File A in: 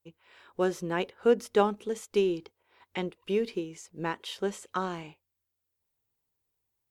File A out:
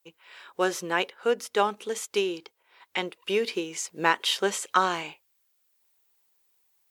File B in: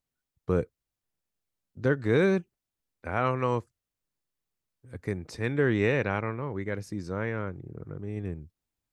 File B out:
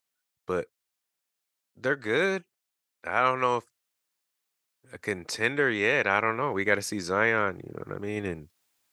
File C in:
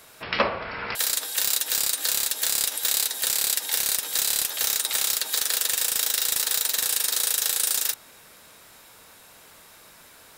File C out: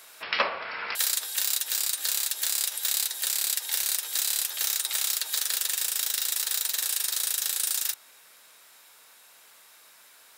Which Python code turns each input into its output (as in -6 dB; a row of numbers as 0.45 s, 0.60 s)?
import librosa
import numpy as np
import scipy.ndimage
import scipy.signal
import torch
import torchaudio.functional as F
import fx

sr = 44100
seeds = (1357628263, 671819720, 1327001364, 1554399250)

y = fx.rider(x, sr, range_db=5, speed_s=0.5)
y = fx.highpass(y, sr, hz=1100.0, slope=6)
y = y * 10.0 ** (-30 / 20.0) / np.sqrt(np.mean(np.square(y)))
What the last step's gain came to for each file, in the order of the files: +10.0 dB, +11.0 dB, -3.0 dB